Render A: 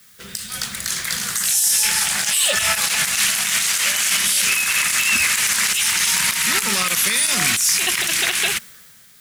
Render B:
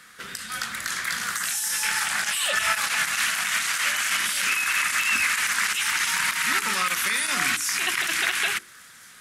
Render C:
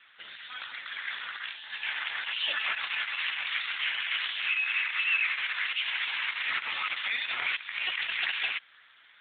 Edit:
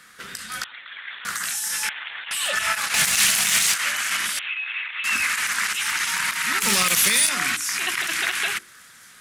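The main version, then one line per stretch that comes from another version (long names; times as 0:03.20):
B
0:00.64–0:01.25: punch in from C
0:01.89–0:02.31: punch in from C
0:02.94–0:03.74: punch in from A
0:04.39–0:05.04: punch in from C
0:06.61–0:07.29: punch in from A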